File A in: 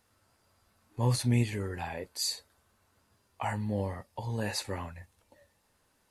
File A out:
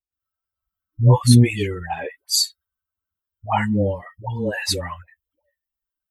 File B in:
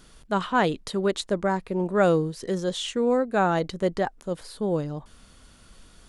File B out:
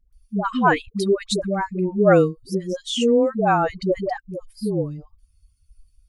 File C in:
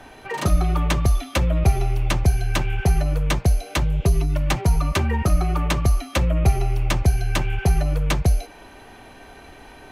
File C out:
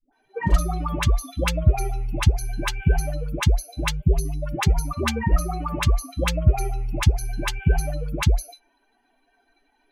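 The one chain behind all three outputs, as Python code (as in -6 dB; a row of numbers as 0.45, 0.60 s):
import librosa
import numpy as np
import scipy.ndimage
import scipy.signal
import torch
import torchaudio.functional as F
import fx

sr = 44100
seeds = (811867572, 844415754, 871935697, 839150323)

y = fx.bin_expand(x, sr, power=2.0)
y = fx.dispersion(y, sr, late='highs', ms=128.0, hz=560.0)
y = y * 10.0 ** (-22 / 20.0) / np.sqrt(np.mean(np.square(y)))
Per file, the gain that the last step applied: +16.0, +7.5, +3.0 dB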